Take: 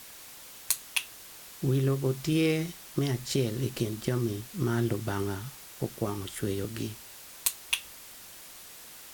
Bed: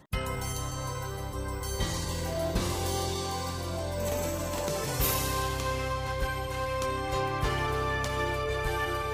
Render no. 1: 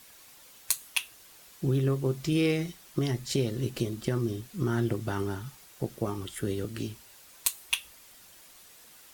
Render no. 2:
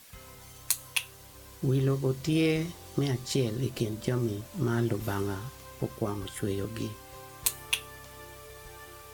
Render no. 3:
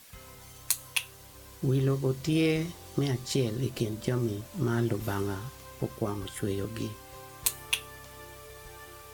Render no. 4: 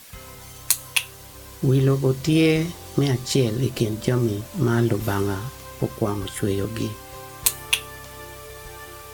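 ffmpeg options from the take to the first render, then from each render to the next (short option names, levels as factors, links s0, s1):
-af "afftdn=nr=7:nf=-48"
-filter_complex "[1:a]volume=0.126[s0];[0:a][s0]amix=inputs=2:normalize=0"
-af anull
-af "volume=2.51"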